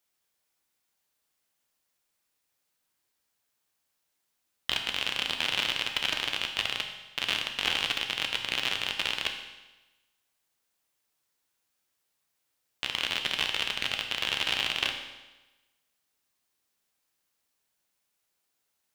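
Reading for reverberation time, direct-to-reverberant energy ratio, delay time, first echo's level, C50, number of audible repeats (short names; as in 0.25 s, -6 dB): 1.1 s, 3.5 dB, none, none, 6.5 dB, none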